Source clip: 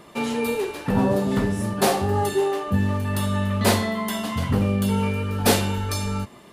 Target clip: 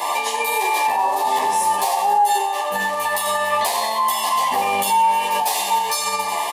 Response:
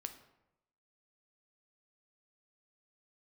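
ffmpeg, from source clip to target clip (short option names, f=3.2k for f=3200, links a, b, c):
-filter_complex "[0:a]asuperstop=centerf=1400:order=20:qfactor=3.2,highshelf=f=4.4k:g=9,aecho=1:1:92|184|276|368:0.237|0.0949|0.0379|0.0152,acontrast=42,highpass=f=840:t=q:w=4.9,acompressor=threshold=-24dB:ratio=6,volume=15.5dB,asoftclip=hard,volume=-15.5dB,asplit=2[a][b];[1:a]atrim=start_sample=2205[c];[b][c]afir=irnorm=-1:irlink=0,volume=-3dB[d];[a][d]amix=inputs=2:normalize=0,alimiter=level_in=22.5dB:limit=-1dB:release=50:level=0:latency=1,asplit=2[e][f];[f]adelay=11.5,afreqshift=0.34[g];[e][g]amix=inputs=2:normalize=1,volume=-8dB"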